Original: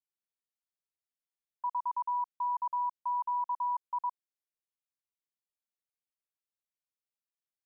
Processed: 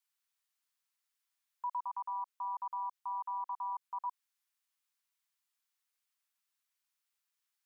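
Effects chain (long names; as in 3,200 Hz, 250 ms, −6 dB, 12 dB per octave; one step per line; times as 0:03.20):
brickwall limiter −38.5 dBFS, peak gain reduction 10.5 dB
high-pass filter 930 Hz 24 dB per octave
0:01.80–0:04.06: amplitude modulation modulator 190 Hz, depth 35%
level +9 dB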